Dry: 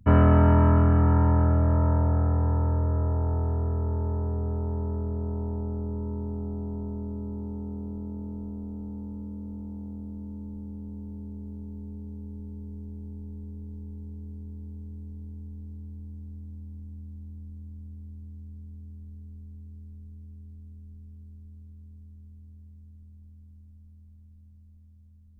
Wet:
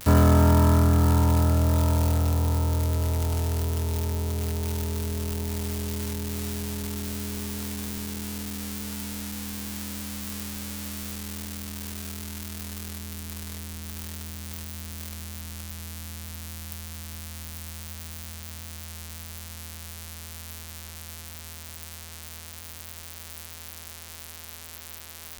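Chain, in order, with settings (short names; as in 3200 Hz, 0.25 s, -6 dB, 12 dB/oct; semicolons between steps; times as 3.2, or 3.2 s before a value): switching spikes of -17.5 dBFS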